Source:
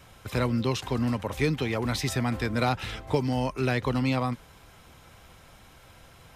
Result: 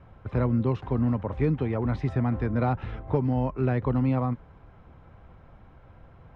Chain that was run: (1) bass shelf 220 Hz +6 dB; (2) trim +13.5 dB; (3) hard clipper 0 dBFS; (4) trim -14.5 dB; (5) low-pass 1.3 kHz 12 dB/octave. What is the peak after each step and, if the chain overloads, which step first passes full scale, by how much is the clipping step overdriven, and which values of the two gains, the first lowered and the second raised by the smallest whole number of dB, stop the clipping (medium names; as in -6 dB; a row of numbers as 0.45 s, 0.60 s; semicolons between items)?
-9.5 dBFS, +4.0 dBFS, 0.0 dBFS, -14.5 dBFS, -14.0 dBFS; step 2, 4.0 dB; step 2 +9.5 dB, step 4 -10.5 dB